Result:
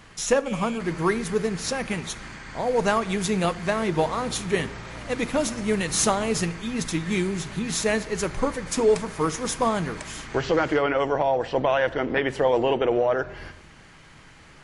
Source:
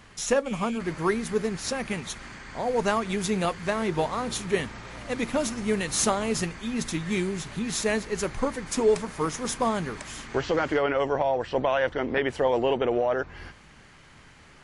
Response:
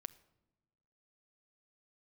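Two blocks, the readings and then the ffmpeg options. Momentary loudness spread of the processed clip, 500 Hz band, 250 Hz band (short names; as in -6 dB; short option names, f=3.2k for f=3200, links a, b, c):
8 LU, +2.5 dB, +2.0 dB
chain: -filter_complex "[1:a]atrim=start_sample=2205[a];[0:a][a]afir=irnorm=-1:irlink=0,volume=7dB"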